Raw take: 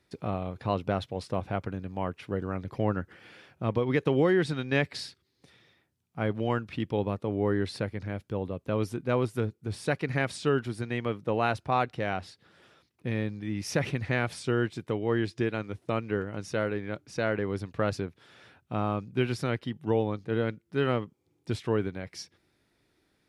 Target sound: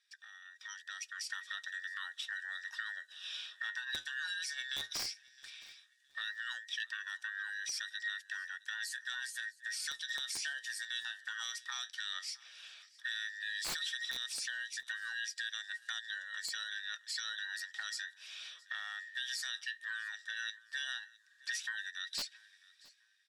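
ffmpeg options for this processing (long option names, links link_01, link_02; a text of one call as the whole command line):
ffmpeg -i in.wav -filter_complex "[0:a]afftfilt=real='real(if(between(b,1,1012),(2*floor((b-1)/92)+1)*92-b,b),0)':imag='imag(if(between(b,1,1012),(2*floor((b-1)/92)+1)*92-b,b),0)*if(between(b,1,1012),-1,1)':win_size=2048:overlap=0.75,acrossover=split=5300[link_01][link_02];[link_01]acompressor=threshold=-42dB:ratio=6[link_03];[link_03][link_02]amix=inputs=2:normalize=0,asuperpass=centerf=5800:order=4:qfactor=0.8,aeval=exprs='(mod(56.2*val(0)+1,2)-1)/56.2':channel_layout=same,flanger=delay=2.4:depth=8.8:regen=66:speed=0.13:shape=sinusoidal,dynaudnorm=framelen=170:gausssize=11:maxgain=13.5dB,alimiter=level_in=9dB:limit=-24dB:level=0:latency=1:release=47,volume=-9dB,highshelf=frequency=7200:gain=-10.5,asplit=2[link_04][link_05];[link_05]aecho=0:1:665|1330:0.075|0.0202[link_06];[link_04][link_06]amix=inputs=2:normalize=0,volume=7dB" out.wav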